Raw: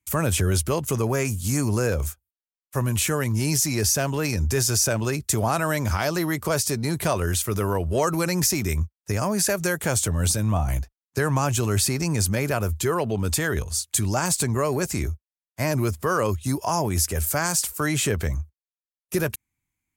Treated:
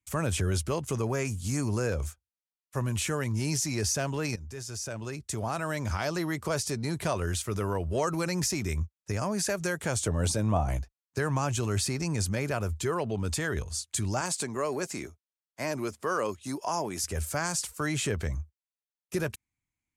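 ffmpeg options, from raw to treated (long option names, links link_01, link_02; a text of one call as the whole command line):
ffmpeg -i in.wav -filter_complex "[0:a]asettb=1/sr,asplit=3[link_01][link_02][link_03];[link_01]atrim=end=10.064[link_04];[link_02]atrim=start=10.06:end=10.77,asetpts=PTS-STARTPTS,afade=type=in:duration=0.004:curve=qsin,afade=type=out:start_time=0.706:duration=0.004:curve=qsin,equalizer=frequency=510:width_type=o:width=2.1:gain=7.5[link_05];[link_03]atrim=start=10.766[link_06];[link_04][link_05]acrossfade=duration=0.004:curve1=hsin:curve2=qsin[link_07];[link_07][link_06]acrossfade=duration=0.004:curve1=qsin:curve2=hsin,asettb=1/sr,asplit=3[link_08][link_09][link_10];[link_08]atrim=end=14.214[link_11];[link_09]atrim=start=14.21:end=17.04,asetpts=PTS-STARTPTS,afade=type=in:duration=0.004:curve=qsin,afade=type=out:start_time=2.826:duration=0.004:curve=qsin,highpass=230[link_12];[link_10]atrim=start=17.036[link_13];[link_11][link_12]acrossfade=duration=0.004:curve1=hsin:curve2=qsin[link_14];[link_14][link_13]acrossfade=duration=0.004:curve1=qsin:curve2=hsin,asplit=2[link_15][link_16];[link_15]atrim=end=4.36,asetpts=PTS-STARTPTS,afade=type=out:start_time=4.356:duration=0.004:curve=hsin:silence=0.177828[link_17];[link_16]atrim=start=4.36,asetpts=PTS-STARTPTS,afade=type=in:duration=1.76:silence=0.177828[link_18];[link_17][link_18]concat=n=2:v=0:a=1,lowpass=8700,volume=-6dB" out.wav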